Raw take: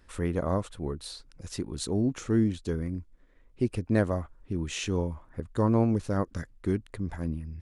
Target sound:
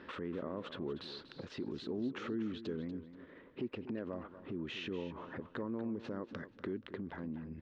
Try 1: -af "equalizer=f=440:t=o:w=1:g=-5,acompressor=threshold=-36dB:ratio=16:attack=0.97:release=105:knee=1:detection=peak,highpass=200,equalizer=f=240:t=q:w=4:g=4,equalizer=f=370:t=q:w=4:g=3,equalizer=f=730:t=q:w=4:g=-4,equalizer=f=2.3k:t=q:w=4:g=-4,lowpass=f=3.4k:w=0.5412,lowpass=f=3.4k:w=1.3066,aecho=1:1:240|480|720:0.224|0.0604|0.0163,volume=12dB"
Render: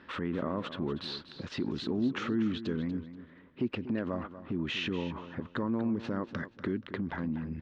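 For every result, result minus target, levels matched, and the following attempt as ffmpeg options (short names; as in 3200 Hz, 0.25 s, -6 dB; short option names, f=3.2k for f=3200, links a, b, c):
compressor: peak gain reduction -11 dB; 500 Hz band -3.0 dB
-af "equalizer=f=440:t=o:w=1:g=-5,acompressor=threshold=-46dB:ratio=16:attack=0.97:release=105:knee=1:detection=peak,highpass=200,equalizer=f=240:t=q:w=4:g=4,equalizer=f=370:t=q:w=4:g=3,equalizer=f=730:t=q:w=4:g=-4,equalizer=f=2.3k:t=q:w=4:g=-4,lowpass=f=3.4k:w=0.5412,lowpass=f=3.4k:w=1.3066,aecho=1:1:240|480|720:0.224|0.0604|0.0163,volume=12dB"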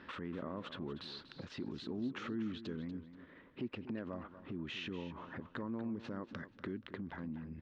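500 Hz band -3.0 dB
-af "equalizer=f=440:t=o:w=1:g=2,acompressor=threshold=-46dB:ratio=16:attack=0.97:release=105:knee=1:detection=peak,highpass=200,equalizer=f=240:t=q:w=4:g=4,equalizer=f=370:t=q:w=4:g=3,equalizer=f=730:t=q:w=4:g=-4,equalizer=f=2.3k:t=q:w=4:g=-4,lowpass=f=3.4k:w=0.5412,lowpass=f=3.4k:w=1.3066,aecho=1:1:240|480|720:0.224|0.0604|0.0163,volume=12dB"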